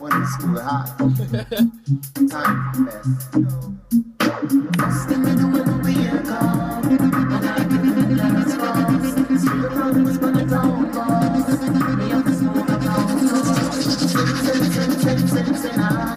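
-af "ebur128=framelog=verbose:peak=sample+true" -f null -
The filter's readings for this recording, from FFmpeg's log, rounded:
Integrated loudness:
  I:         -19.1 LUFS
  Threshold: -29.1 LUFS
Loudness range:
  LRA:         2.5 LU
  Threshold: -39.0 LUFS
  LRA low:   -20.7 LUFS
  LRA high:  -18.2 LUFS
Sample peak:
  Peak:       -7.3 dBFS
True peak:
  Peak:       -7.2 dBFS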